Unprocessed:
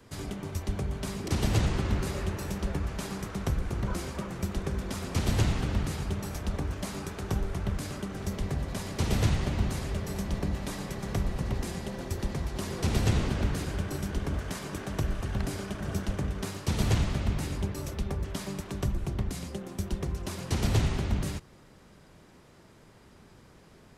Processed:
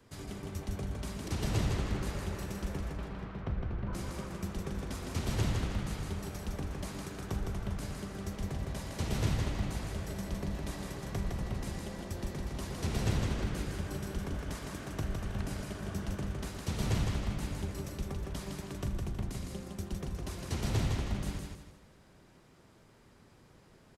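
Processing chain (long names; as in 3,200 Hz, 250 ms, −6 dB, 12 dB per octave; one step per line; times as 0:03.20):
0:02.92–0:03.93: high-frequency loss of the air 340 metres
on a send: repeating echo 160 ms, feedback 34%, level −4 dB
on the sum: level −6.5 dB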